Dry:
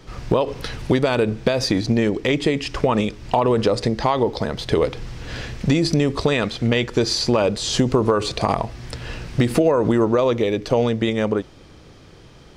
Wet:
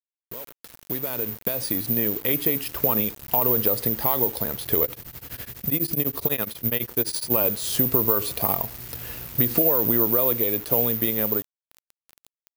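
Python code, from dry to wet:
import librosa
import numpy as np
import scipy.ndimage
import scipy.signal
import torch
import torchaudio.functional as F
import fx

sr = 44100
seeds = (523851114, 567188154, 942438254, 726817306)

y = fx.fade_in_head(x, sr, length_s=2.42)
y = scipy.signal.sosfilt(scipy.signal.butter(2, 57.0, 'highpass', fs=sr, output='sos'), y)
y = fx.quant_dither(y, sr, seeds[0], bits=6, dither='none')
y = (np.kron(y[::3], np.eye(3)[0]) * 3)[:len(y)]
y = fx.tremolo_abs(y, sr, hz=12.0, at=(4.84, 7.3), fade=0.02)
y = y * 10.0 ** (-8.0 / 20.0)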